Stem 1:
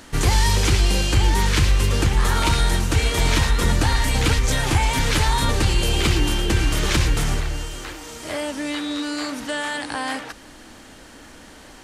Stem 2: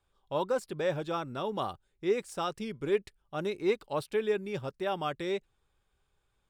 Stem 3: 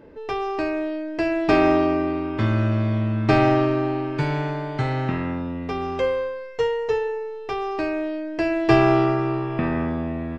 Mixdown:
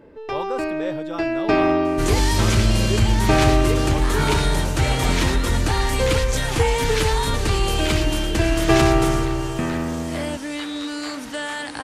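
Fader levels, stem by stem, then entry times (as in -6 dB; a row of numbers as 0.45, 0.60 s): -2.0, +0.5, -0.5 dB; 1.85, 0.00, 0.00 s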